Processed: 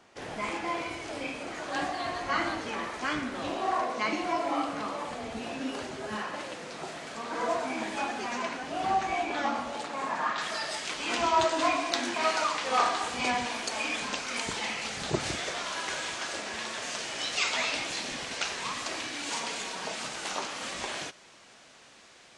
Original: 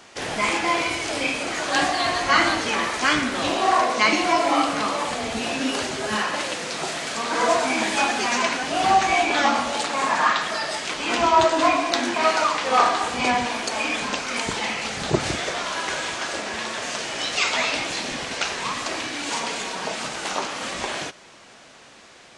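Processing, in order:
high-shelf EQ 2,000 Hz −8 dB, from 0:10.38 +3.5 dB
level −8.5 dB

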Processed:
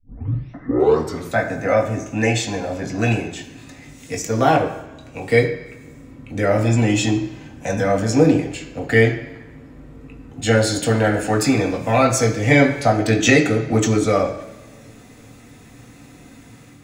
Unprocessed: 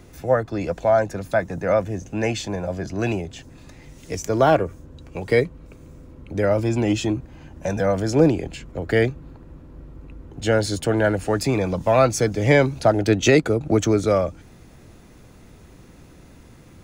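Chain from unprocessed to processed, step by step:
turntable start at the beginning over 1.34 s
time-frequency box erased 0:00.53–0:00.79, 2,100–12,000 Hz
automatic gain control gain up to 3.5 dB
convolution reverb RT60 0.95 s, pre-delay 3 ms, DRR −0.5 dB
level +1 dB

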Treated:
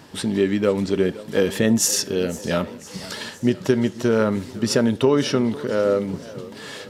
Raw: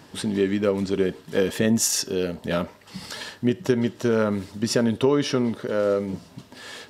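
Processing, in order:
feedback echo with a swinging delay time 506 ms, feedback 60%, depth 162 cents, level −18.5 dB
level +2.5 dB

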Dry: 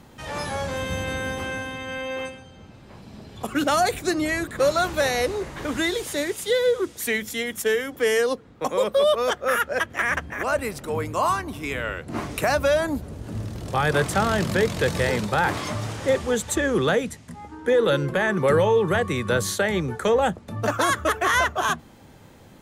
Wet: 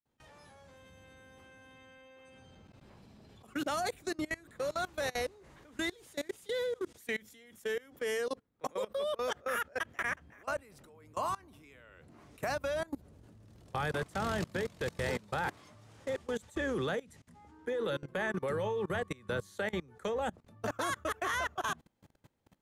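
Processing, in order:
fade in at the beginning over 0.69 s
output level in coarse steps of 24 dB
level −9 dB

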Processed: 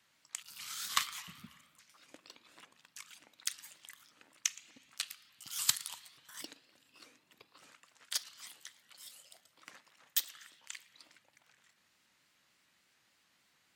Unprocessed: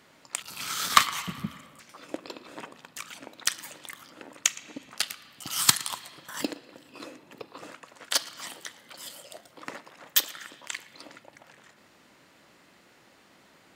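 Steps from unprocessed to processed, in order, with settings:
guitar amp tone stack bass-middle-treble 5-5-5
pitch modulation by a square or saw wave saw up 3.4 Hz, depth 160 cents
level −3 dB

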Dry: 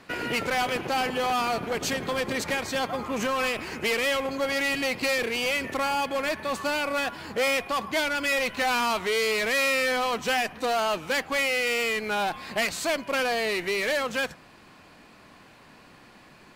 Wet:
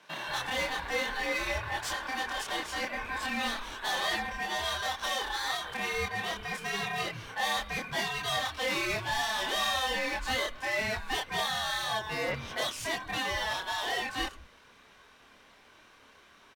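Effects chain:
ring modulation 1,300 Hz
multiband delay without the direct sound highs, lows 180 ms, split 150 Hz
multi-voice chorus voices 4, 0.91 Hz, delay 27 ms, depth 2.7 ms

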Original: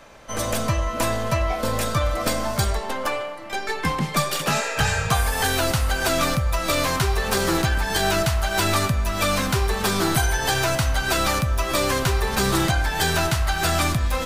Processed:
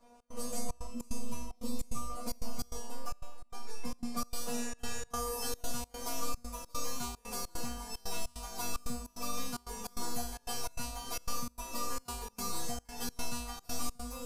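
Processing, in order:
flat-topped bell 2,300 Hz −10.5 dB
tuned comb filter 240 Hz, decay 0.65 s, harmonics all, mix 100%
gate pattern "xx.xxxx." 149 BPM −24 dB
0:00.87–0:02.10: graphic EQ with 15 bands 250 Hz +4 dB, 630 Hz −8 dB, 1,600 Hz −8 dB
level +6 dB

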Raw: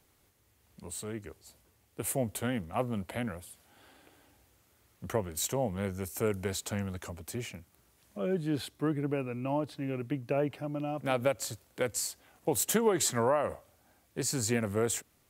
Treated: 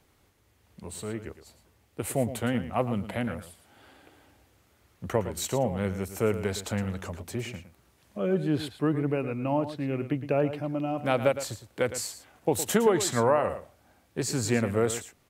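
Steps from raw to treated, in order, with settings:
high-shelf EQ 6,200 Hz −8.5 dB
on a send: single-tap delay 112 ms −12 dB
on the sum: level +4.5 dB

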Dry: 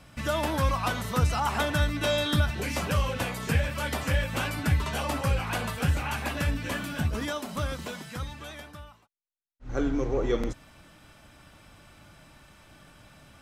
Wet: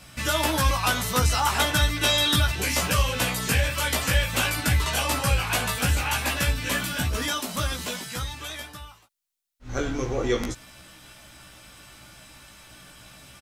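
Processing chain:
high-shelf EQ 2,300 Hz +11 dB
double-tracking delay 16 ms −3 dB

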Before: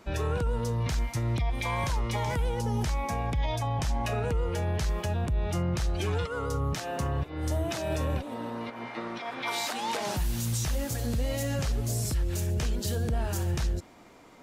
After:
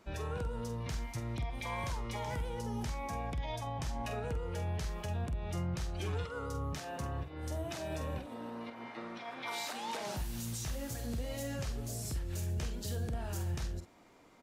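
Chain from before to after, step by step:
double-tracking delay 47 ms −9 dB
level −8.5 dB

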